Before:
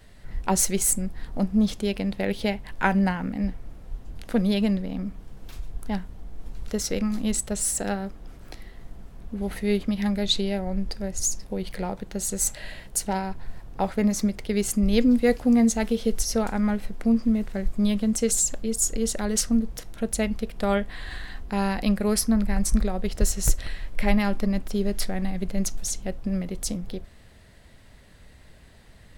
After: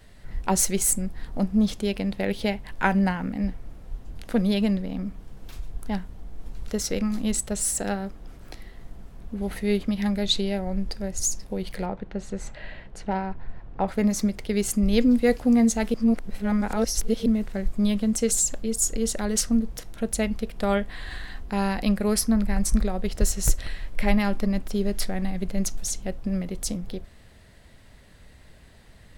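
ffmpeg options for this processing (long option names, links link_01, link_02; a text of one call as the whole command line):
ffmpeg -i in.wav -filter_complex "[0:a]asplit=3[link_01][link_02][link_03];[link_01]afade=type=out:start_time=11.85:duration=0.02[link_04];[link_02]lowpass=2500,afade=type=in:start_time=11.85:duration=0.02,afade=type=out:start_time=13.87:duration=0.02[link_05];[link_03]afade=type=in:start_time=13.87:duration=0.02[link_06];[link_04][link_05][link_06]amix=inputs=3:normalize=0,asplit=3[link_07][link_08][link_09];[link_07]atrim=end=15.942[link_10];[link_08]atrim=start=15.938:end=17.262,asetpts=PTS-STARTPTS,areverse[link_11];[link_09]atrim=start=17.258[link_12];[link_10][link_11]acrossfade=duration=0.004:curve1=hsin:curve2=hsin[link_13];[link_13][link_12]acrossfade=duration=0.004:curve1=hsin:curve2=hsin" out.wav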